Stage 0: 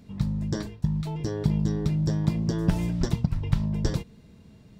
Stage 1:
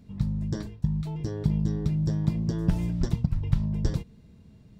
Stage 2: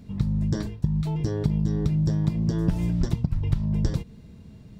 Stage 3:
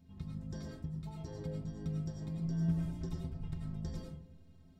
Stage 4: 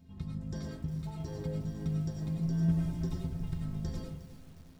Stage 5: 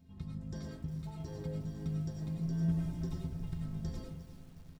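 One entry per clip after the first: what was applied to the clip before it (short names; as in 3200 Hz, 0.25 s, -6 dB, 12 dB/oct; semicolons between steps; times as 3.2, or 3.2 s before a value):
low shelf 220 Hz +7.5 dB; gain -6 dB
compressor 3:1, threshold -27 dBFS, peak gain reduction 9 dB; gain +6.5 dB
metallic resonator 78 Hz, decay 0.26 s, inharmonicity 0.03; digital reverb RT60 0.59 s, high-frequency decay 0.35×, pre-delay 60 ms, DRR 0 dB; gain -8.5 dB
lo-fi delay 0.359 s, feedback 55%, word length 9-bit, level -14 dB; gain +4 dB
echo 1.161 s -16.5 dB; gain -3.5 dB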